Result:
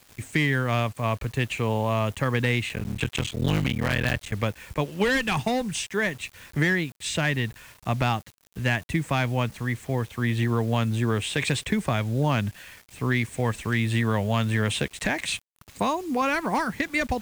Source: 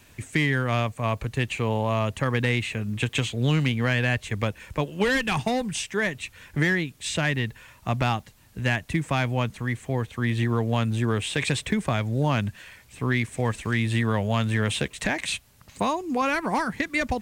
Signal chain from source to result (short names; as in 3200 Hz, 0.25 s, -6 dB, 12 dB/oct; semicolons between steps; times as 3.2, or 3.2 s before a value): 2.69–4.34 cycle switcher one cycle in 3, muted; bit-crush 8-bit